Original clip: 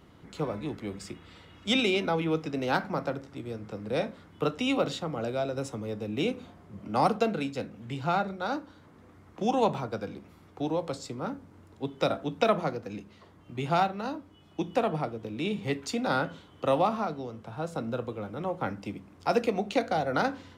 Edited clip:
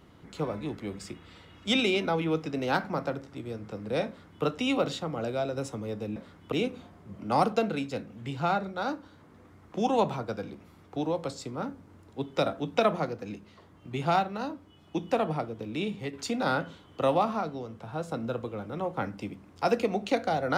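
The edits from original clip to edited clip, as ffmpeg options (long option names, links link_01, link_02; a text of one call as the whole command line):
ffmpeg -i in.wav -filter_complex "[0:a]asplit=4[link_01][link_02][link_03][link_04];[link_01]atrim=end=6.162[link_05];[link_02]atrim=start=4.068:end=4.432[link_06];[link_03]atrim=start=6.158:end=15.77,asetpts=PTS-STARTPTS,afade=type=out:start_time=9.162:duration=0.45:curve=qsin:silence=0.398107[link_07];[link_04]atrim=start=15.77,asetpts=PTS-STARTPTS,afade=type=in:duration=0.004:curve=hsin:silence=0.398107[link_08];[link_05][link_06]acrossfade=duration=0.004:curve1=hsin:curve2=hsin[link_09];[link_07][link_08]concat=n=2:v=0:a=1[link_10];[link_09][link_10]acrossfade=duration=0.004:curve1=hsin:curve2=hsin" out.wav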